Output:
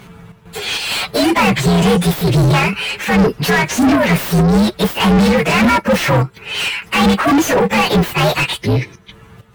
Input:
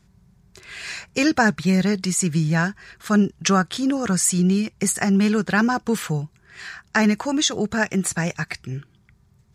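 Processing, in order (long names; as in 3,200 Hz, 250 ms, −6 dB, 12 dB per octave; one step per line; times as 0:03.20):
partials spread apart or drawn together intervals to 123%
square-wave tremolo 2.2 Hz, depth 60%, duty 70%
mid-hump overdrive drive 38 dB, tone 1,800 Hz, clips at −8 dBFS
level +4 dB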